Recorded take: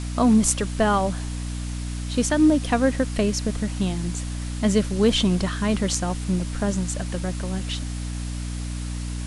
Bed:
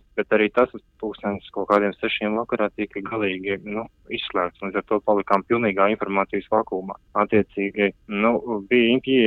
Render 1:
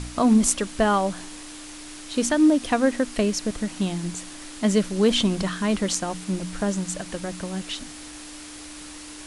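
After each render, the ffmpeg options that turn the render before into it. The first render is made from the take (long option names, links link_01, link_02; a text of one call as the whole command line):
ffmpeg -i in.wav -af "bandreject=frequency=60:width_type=h:width=4,bandreject=frequency=120:width_type=h:width=4,bandreject=frequency=180:width_type=h:width=4,bandreject=frequency=240:width_type=h:width=4" out.wav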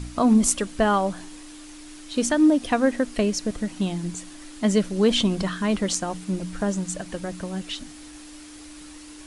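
ffmpeg -i in.wav -af "afftdn=noise_reduction=6:noise_floor=-40" out.wav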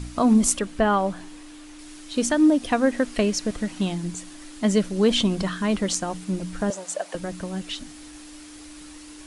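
ffmpeg -i in.wav -filter_complex "[0:a]asettb=1/sr,asplit=3[link_01][link_02][link_03];[link_01]atrim=end=0.594[link_04];[link_02]atrim=start=0.59:end=1.79,asetpts=PTS-STARTPTS,afade=type=in:duration=0.004:curve=qsin,afade=type=out:start_time=1.196:duration=0.004:curve=qsin,acrossover=split=3600[link_05][link_06];[link_06]acompressor=threshold=-50dB:ratio=4:attack=1:release=60[link_07];[link_05][link_07]amix=inputs=2:normalize=0[link_08];[link_03]atrim=start=1.786[link_09];[link_04][link_08]acrossfade=duration=0.004:curve1=hsin:curve2=qsin[link_10];[link_10][link_09]acrossfade=duration=0.004:curve1=qsin:curve2=hsin,asettb=1/sr,asplit=3[link_11][link_12][link_13];[link_11]atrim=end=2.964[link_14];[link_12]atrim=start=2.96:end=3.95,asetpts=PTS-STARTPTS,afade=type=in:duration=0.004:curve=qsin,afade=type=out:start_time=0.986:duration=0.004:curve=qsin,equalizer=frequency=2000:width_type=o:width=3:gain=3[link_15];[link_13]atrim=start=3.946[link_16];[link_14][link_15]acrossfade=duration=0.004:curve1=hsin:curve2=qsin[link_17];[link_17][link_16]acrossfade=duration=0.004:curve1=qsin:curve2=hsin,asettb=1/sr,asplit=3[link_18][link_19][link_20];[link_18]atrim=end=6.704[link_21];[link_19]atrim=start=6.7:end=7.15,asetpts=PTS-STARTPTS,afade=type=in:duration=0.004:curve=qsin,afade=type=out:start_time=0.446:duration=0.004:curve=qsin,highpass=frequency=600:width_type=q:width=2.7[link_22];[link_20]atrim=start=7.146[link_23];[link_21][link_22]acrossfade=duration=0.004:curve1=hsin:curve2=qsin[link_24];[link_24][link_23]acrossfade=duration=0.004:curve1=qsin:curve2=hsin" out.wav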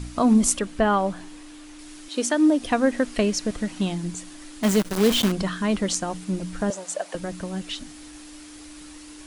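ffmpeg -i in.wav -filter_complex "[0:a]asettb=1/sr,asplit=3[link_01][link_02][link_03];[link_01]atrim=end=2.084[link_04];[link_02]atrim=start=2.08:end=2.59,asetpts=PTS-STARTPTS,afade=type=in:duration=0.004:curve=qsin,afade=type=out:start_time=0.506:duration=0.004:curve=qsin,highpass=frequency=260:width=0.5412,highpass=frequency=260:width=1.3066[link_05];[link_03]atrim=start=2.586[link_06];[link_04][link_05]acrossfade=duration=0.004:curve1=hsin:curve2=qsin[link_07];[link_07][link_06]acrossfade=duration=0.004:curve1=qsin:curve2=hsin,asettb=1/sr,asplit=3[link_08][link_09][link_10];[link_08]atrim=end=4.634[link_11];[link_09]atrim=start=4.63:end=5.32,asetpts=PTS-STARTPTS,afade=type=in:duration=0.004:curve=qsin,afade=type=out:start_time=0.686:duration=0.004:curve=qsin,acrusher=bits=5:dc=4:mix=0:aa=0.000001[link_12];[link_10]atrim=start=5.316[link_13];[link_11][link_12]acrossfade=duration=0.004:curve1=hsin:curve2=qsin[link_14];[link_14][link_13]acrossfade=duration=0.004:curve1=qsin:curve2=hsin" out.wav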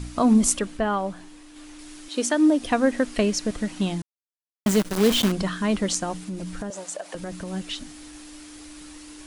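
ffmpeg -i in.wav -filter_complex "[0:a]asettb=1/sr,asplit=3[link_01][link_02][link_03];[link_01]atrim=end=6.134[link_04];[link_02]atrim=start=6.13:end=7.48,asetpts=PTS-STARTPTS,afade=type=in:duration=0.004:curve=qsin,afade=type=out:start_time=1.346:duration=0.004:curve=qsin,acompressor=threshold=-28dB:ratio=6:attack=3.2:release=140:knee=1:detection=peak[link_05];[link_03]atrim=start=7.476[link_06];[link_04][link_05]acrossfade=duration=0.004:curve1=hsin:curve2=qsin[link_07];[link_07][link_06]acrossfade=duration=0.004:curve1=qsin:curve2=hsin,asplit=5[link_08][link_09][link_10][link_11][link_12];[link_08]atrim=end=0.772[link_13];[link_09]atrim=start=0.768:end=1.562,asetpts=PTS-STARTPTS,volume=-4dB[link_14];[link_10]atrim=start=1.558:end=4.02,asetpts=PTS-STARTPTS,afade=type=out:start_time=2.458:duration=0.004:curve=hsin[link_15];[link_11]atrim=start=4.02:end=4.66,asetpts=PTS-STARTPTS,volume=0[link_16];[link_12]atrim=start=4.66,asetpts=PTS-STARTPTS,afade=type=in:duration=0.004:curve=hsin[link_17];[link_13][link_14]acrossfade=duration=0.004:curve1=hsin:curve2=hsin[link_18];[link_15][link_16][link_17]concat=n=3:v=0:a=1[link_19];[link_18][link_19]acrossfade=duration=0.004:curve1=hsin:curve2=hsin" out.wav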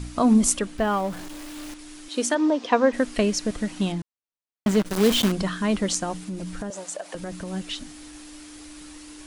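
ffmpeg -i in.wav -filter_complex "[0:a]asettb=1/sr,asplit=3[link_01][link_02][link_03];[link_01]atrim=end=0.784[link_04];[link_02]atrim=start=0.78:end=1.74,asetpts=PTS-STARTPTS,afade=type=in:duration=0.004:curve=qsin,afade=type=out:start_time=0.956:duration=0.004:curve=qsin,aeval=exprs='val(0)+0.5*0.0178*sgn(val(0))':channel_layout=same[link_05];[link_03]atrim=start=1.736[link_06];[link_04][link_05]acrossfade=duration=0.004:curve1=hsin:curve2=qsin[link_07];[link_07][link_06]acrossfade=duration=0.004:curve1=qsin:curve2=hsin,asplit=3[link_08][link_09][link_10];[link_08]afade=type=out:start_time=2.34:duration=0.02[link_11];[link_09]highpass=frequency=190:width=0.5412,highpass=frequency=190:width=1.3066,equalizer=frequency=300:width_type=q:width=4:gain=-5,equalizer=frequency=470:width_type=q:width=4:gain=6,equalizer=frequency=1000:width_type=q:width=4:gain=9,lowpass=frequency=6200:width=0.5412,lowpass=frequency=6200:width=1.3066,afade=type=in:start_time=2.34:duration=0.02,afade=type=out:start_time=2.92:duration=0.02[link_12];[link_10]afade=type=in:start_time=2.92:duration=0.02[link_13];[link_11][link_12][link_13]amix=inputs=3:normalize=0,asettb=1/sr,asplit=3[link_14][link_15][link_16];[link_14]atrim=end=3.924[link_17];[link_15]atrim=start=3.92:end=4.86,asetpts=PTS-STARTPTS,afade=type=in:duration=0.004:curve=qsin,afade=type=out:start_time=0.936:duration=0.004:curve=qsin,lowpass=frequency=3300:poles=1[link_18];[link_16]atrim=start=4.856[link_19];[link_17][link_18]acrossfade=duration=0.004:curve1=hsin:curve2=qsin[link_20];[link_20][link_19]acrossfade=duration=0.004:curve1=qsin:curve2=hsin" out.wav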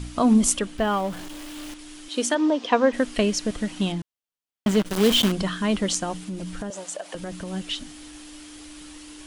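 ffmpeg -i in.wav -af "equalizer=frequency=3100:width_type=o:width=0.35:gain=5" out.wav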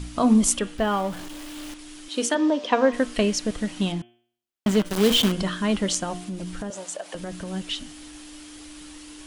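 ffmpeg -i in.wav -af "bandreject=frequency=118.5:width_type=h:width=4,bandreject=frequency=237:width_type=h:width=4,bandreject=frequency=355.5:width_type=h:width=4,bandreject=frequency=474:width_type=h:width=4,bandreject=frequency=592.5:width_type=h:width=4,bandreject=frequency=711:width_type=h:width=4,bandreject=frequency=829.5:width_type=h:width=4,bandreject=frequency=948:width_type=h:width=4,bandreject=frequency=1066.5:width_type=h:width=4,bandreject=frequency=1185:width_type=h:width=4,bandreject=frequency=1303.5:width_type=h:width=4,bandreject=frequency=1422:width_type=h:width=4,bandreject=frequency=1540.5:width_type=h:width=4,bandreject=frequency=1659:width_type=h:width=4,bandreject=frequency=1777.5:width_type=h:width=4,bandreject=frequency=1896:width_type=h:width=4,bandreject=frequency=2014.5:width_type=h:width=4,bandreject=frequency=2133:width_type=h:width=4,bandreject=frequency=2251.5:width_type=h:width=4,bandreject=frequency=2370:width_type=h:width=4,bandreject=frequency=2488.5:width_type=h:width=4,bandreject=frequency=2607:width_type=h:width=4,bandreject=frequency=2725.5:width_type=h:width=4,bandreject=frequency=2844:width_type=h:width=4,bandreject=frequency=2962.5:width_type=h:width=4,bandreject=frequency=3081:width_type=h:width=4,bandreject=frequency=3199.5:width_type=h:width=4,bandreject=frequency=3318:width_type=h:width=4,bandreject=frequency=3436.5:width_type=h:width=4" out.wav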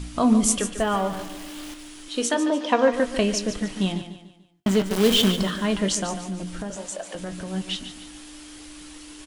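ffmpeg -i in.wav -filter_complex "[0:a]asplit=2[link_01][link_02];[link_02]adelay=21,volume=-12dB[link_03];[link_01][link_03]amix=inputs=2:normalize=0,aecho=1:1:146|292|438|584:0.282|0.113|0.0451|0.018" out.wav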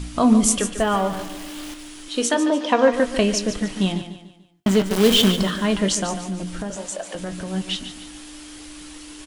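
ffmpeg -i in.wav -af "volume=3dB,alimiter=limit=-3dB:level=0:latency=1" out.wav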